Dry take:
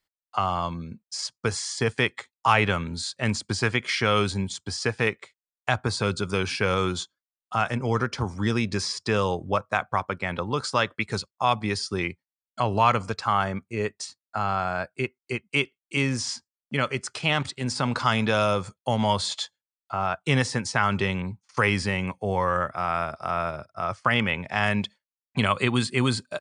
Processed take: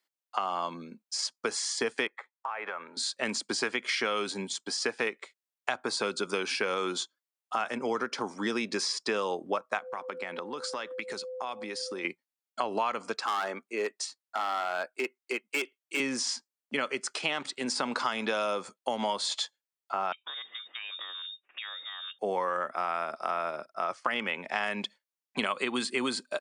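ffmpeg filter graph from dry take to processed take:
-filter_complex "[0:a]asettb=1/sr,asplit=3[s0][s1][s2];[s0]atrim=end=2.074[s3];[s1]atrim=start=2.07:end=2.97,asetpts=PTS-STARTPTS,afade=t=in:d=0.004:c=qsin,afade=t=out:st=0.896:d=0.004:c=qsin,acrossover=split=510 2100:gain=0.112 1 0.0708[s4][s5][s6];[s4][s5][s6]amix=inputs=3:normalize=0,bandreject=f=2900:w=14,acompressor=threshold=0.0282:ratio=6:attack=3.2:release=140:knee=1:detection=peak[s7];[s2]atrim=start=2.966[s8];[s3][s7]acrossfade=d=0.004:c1=hsin:c2=qsin[s9];[s9][s8]acrossfade=d=0.004:c1=qsin:c2=hsin,asettb=1/sr,asplit=3[s10][s11][s12];[s10]atrim=end=9.784[s13];[s11]atrim=start=9.78:end=12.05,asetpts=PTS-STARTPTS,afade=t=in:d=0.004:c=qsin,afade=t=out:st=2.266:d=0.004:c=qsin,aeval=exprs='val(0)+0.0158*sin(2*PI*510*n/s)':c=same,acompressor=threshold=0.0282:ratio=6:attack=3.2:release=140:knee=1:detection=peak[s14];[s12]atrim=start=12.046[s15];[s13][s14]acrossfade=d=0.004:c1=hsin:c2=qsin[s16];[s16][s15]acrossfade=d=0.004:c1=qsin:c2=hsin,asettb=1/sr,asplit=3[s17][s18][s19];[s17]atrim=end=13.264[s20];[s18]atrim=start=13.26:end=16,asetpts=PTS-STARTPTS,afade=t=in:d=0.004:c=qsin,afade=t=out:st=2.736:d=0.004:c=qsin,highpass=290,asoftclip=type=hard:threshold=0.075[s21];[s19]atrim=start=15.996[s22];[s20][s21]acrossfade=d=0.004:c1=hsin:c2=qsin[s23];[s23][s22]acrossfade=d=0.004:c1=qsin:c2=hsin,asettb=1/sr,asplit=3[s24][s25][s26];[s24]atrim=end=20.124[s27];[s25]atrim=start=20.12:end=22.19,asetpts=PTS-STARTPTS,afade=t=in:d=0.004:c=qsin,afade=t=out:st=2.066:d=0.004:c=qsin,acompressor=threshold=0.0112:ratio=4:attack=3.2:release=140:knee=1:detection=peak,lowpass=f=3200:t=q:w=0.5098,lowpass=f=3200:t=q:w=0.6013,lowpass=f=3200:t=q:w=0.9,lowpass=f=3200:t=q:w=2.563,afreqshift=-3800[s28];[s26]atrim=start=22.186[s29];[s27][s28]acrossfade=d=0.004:c1=hsin:c2=qsin[s30];[s30][s29]acrossfade=d=0.004:c1=qsin:c2=hsin,highpass=f=250:w=0.5412,highpass=f=250:w=1.3066,acompressor=threshold=0.0501:ratio=6"

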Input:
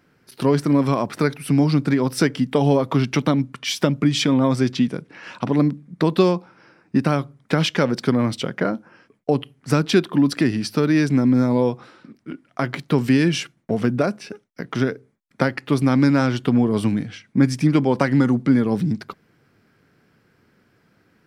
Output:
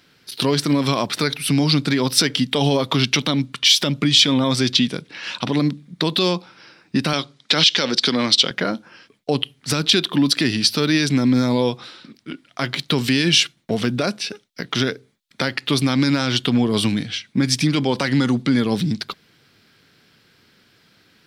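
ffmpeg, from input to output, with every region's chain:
-filter_complex "[0:a]asettb=1/sr,asplit=3[s0][s1][s2];[s0]atrim=end=7.134[s3];[s1]atrim=start=7.13:end=8.51,asetpts=PTS-STARTPTS,afade=t=in:d=0.004:c=qsin,afade=t=out:st=1.376:d=0.004:c=qsin,highpass=200,lowpass=7900,equalizer=f=4900:w=0.77:g=7.5[s4];[s2]atrim=start=8.506[s5];[s3][s4]acrossfade=d=0.004:c1=hsin:c2=qsin[s6];[s6][s5]acrossfade=d=0.004:c1=qsin:c2=hsin,equalizer=f=3700:t=o:w=0.95:g=11.5,alimiter=limit=0.335:level=0:latency=1:release=51,highshelf=f=2300:g=9"

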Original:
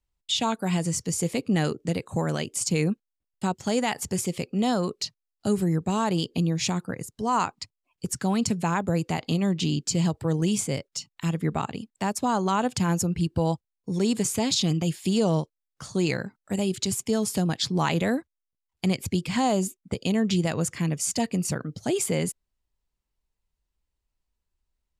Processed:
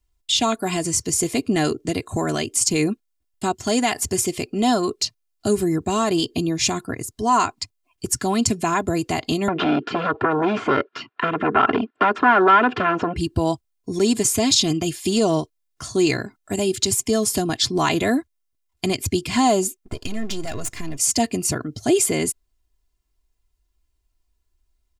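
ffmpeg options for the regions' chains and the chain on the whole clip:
-filter_complex "[0:a]asettb=1/sr,asplit=3[s0][s1][s2];[s0]atrim=end=9.484[s3];[s1]atrim=start=9.48:end=13.16,asetpts=PTS-STARTPTS,afade=t=in:d=0.004:c=qsin,afade=t=out:st=3.676:d=0.004:c=qsin,acompressor=threshold=0.0398:ratio=4:attack=3.2:release=140:knee=1:detection=peak,aeval=exprs='0.178*sin(PI/2*5.01*val(0)/0.178)':c=same,highpass=310,equalizer=f=450:t=q:w=4:g=4,equalizer=f=660:t=q:w=4:g=-5,equalizer=f=1400:t=q:w=4:g=8,equalizer=f=2100:t=q:w=4:g=-7,lowpass=f=2400:w=0.5412,lowpass=f=2400:w=1.3066[s4];[s2]atrim=start=13.156[s5];[s3][s4]acrossfade=d=0.004:c1=hsin:c2=qsin[s6];[s6][s5]acrossfade=d=0.004:c1=qsin:c2=hsin,asettb=1/sr,asplit=3[s7][s8][s9];[s7]atrim=end=19.784[s10];[s8]atrim=start=19.78:end=20.98,asetpts=PTS-STARTPTS,afade=t=in:d=0.004:c=qsin,afade=t=out:st=1.196:d=0.004:c=qsin,aeval=exprs='if(lt(val(0),0),0.251*val(0),val(0))':c=same,acompressor=threshold=0.0355:ratio=2.5:attack=3.2:release=140:knee=1:detection=peak[s11];[s9]atrim=start=20.976[s12];[s10][s11]acrossfade=d=0.004:c1=hsin:c2=qsin[s13];[s13][s12]acrossfade=d=0.004:c1=qsin:c2=hsin,bass=f=250:g=3,treble=f=4000:g=3,aecho=1:1:2.9:0.7,volume=1.58"

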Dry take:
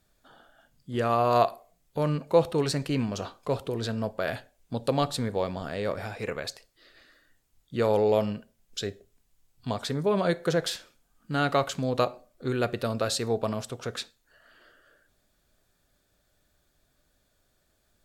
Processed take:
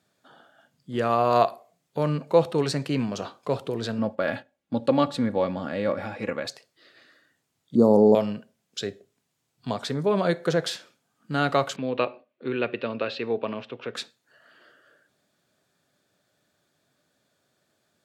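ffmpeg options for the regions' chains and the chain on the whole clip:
-filter_complex "[0:a]asettb=1/sr,asplit=3[s0][s1][s2];[s0]atrim=end=3.984[s3];[s1]atrim=start=3.98:end=6.46,asetpts=PTS-STARTPTS,afade=t=in:d=0.004:c=qsin,afade=t=out:st=2.476:d=0.004:c=qsin,agate=range=0.398:threshold=0.00398:ratio=16:release=100:detection=peak,bass=f=250:g=5,treble=f=4000:g=-9,aecho=1:1:3.6:0.59,atrim=end_sample=109368[s4];[s2]atrim=start=6.456[s5];[s3][s4]acrossfade=d=0.004:c1=hsin:c2=qsin[s6];[s6][s5]acrossfade=d=0.004:c1=qsin:c2=hsin,asettb=1/sr,asplit=3[s7][s8][s9];[s7]atrim=end=7.754[s10];[s8]atrim=start=7.75:end=8.15,asetpts=PTS-STARTPTS,afade=t=in:d=0.004:c=qsin,afade=t=out:st=0.396:d=0.004:c=qsin,asuperstop=centerf=2300:order=8:qfactor=0.64,equalizer=f=230:t=o:w=1.1:g=13[s11];[s9]atrim=start=8.146[s12];[s10][s11]acrossfade=d=0.004:c1=hsin:c2=qsin[s13];[s13][s12]acrossfade=d=0.004:c1=qsin:c2=hsin,asettb=1/sr,asplit=3[s14][s15][s16];[s14]atrim=end=11.764[s17];[s15]atrim=start=11.76:end=13.95,asetpts=PTS-STARTPTS,afade=t=in:d=0.004:c=qsin,afade=t=out:st=2.186:d=0.004:c=qsin,agate=range=0.447:threshold=0.00178:ratio=16:release=100:detection=peak,highpass=160,equalizer=f=170:t=q:w=4:g=-10,equalizer=f=710:t=q:w=4:g=-7,equalizer=f=1300:t=q:w=4:g=-4,equalizer=f=2600:t=q:w=4:g=8,lowpass=f=3400:w=0.5412,lowpass=f=3400:w=1.3066[s18];[s16]atrim=start=13.946[s19];[s17][s18]acrossfade=d=0.004:c1=hsin:c2=qsin[s20];[s20][s19]acrossfade=d=0.004:c1=qsin:c2=hsin,highpass=f=120:w=0.5412,highpass=f=120:w=1.3066,highshelf=f=11000:g=-11.5,volume=1.26"

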